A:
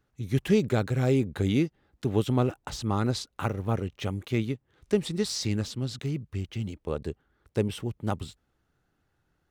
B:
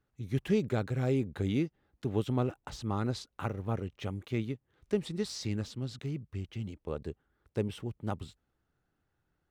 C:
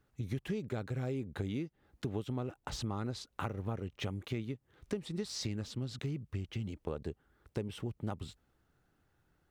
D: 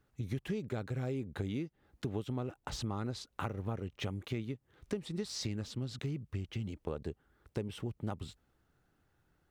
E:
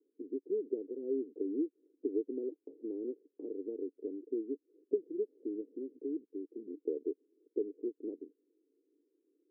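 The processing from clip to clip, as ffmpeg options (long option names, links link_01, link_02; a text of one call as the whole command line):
ffmpeg -i in.wav -af "highshelf=frequency=4400:gain=-5.5,volume=-5.5dB" out.wav
ffmpeg -i in.wav -af "acompressor=threshold=-40dB:ratio=6,volume=5.5dB" out.wav
ffmpeg -i in.wav -af anull out.wav
ffmpeg -i in.wav -af "asuperpass=centerf=360:order=8:qfactor=1.9,volume=7dB" out.wav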